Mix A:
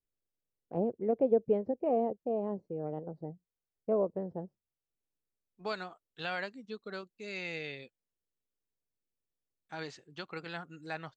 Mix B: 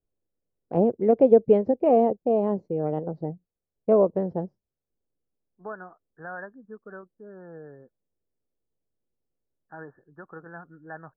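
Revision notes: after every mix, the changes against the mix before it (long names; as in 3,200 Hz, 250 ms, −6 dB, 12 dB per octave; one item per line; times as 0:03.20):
first voice +10.5 dB
second voice: add linear-phase brick-wall low-pass 1,800 Hz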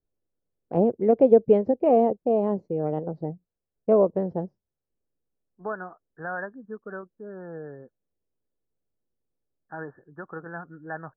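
second voice +5.0 dB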